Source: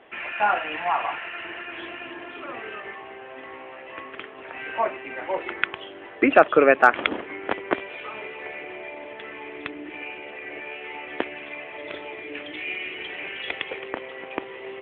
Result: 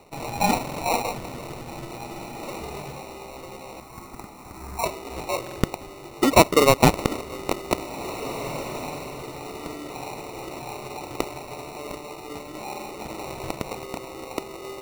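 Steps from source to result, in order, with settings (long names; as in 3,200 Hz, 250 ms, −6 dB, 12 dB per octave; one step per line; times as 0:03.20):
0:11.94–0:13.01: high-shelf EQ 3,000 Hz −10 dB
decimation without filtering 27×
0:03.80–0:04.84: phaser with its sweep stopped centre 1,300 Hz, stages 4
on a send: feedback delay with all-pass diffusion 1,918 ms, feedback 41%, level −15 dB
on the sum: buffer that repeats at 0:00.63/0:05.42, samples 2,048, times 2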